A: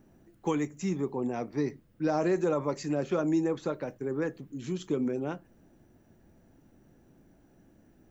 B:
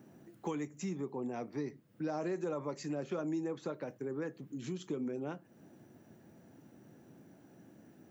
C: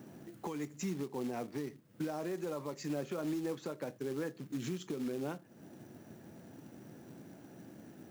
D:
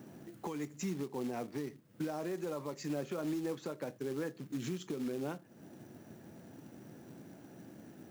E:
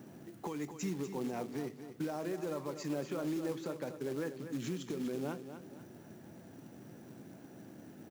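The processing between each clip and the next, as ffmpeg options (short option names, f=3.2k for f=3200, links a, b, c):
-af "highpass=f=110:w=0.5412,highpass=f=110:w=1.3066,acompressor=threshold=-47dB:ratio=2,volume=3dB"
-af "acrusher=bits=4:mode=log:mix=0:aa=0.000001,alimiter=level_in=11dB:limit=-24dB:level=0:latency=1:release=482,volume=-11dB,volume=5.5dB"
-af anull
-af "aecho=1:1:243|486|729|972:0.316|0.126|0.0506|0.0202"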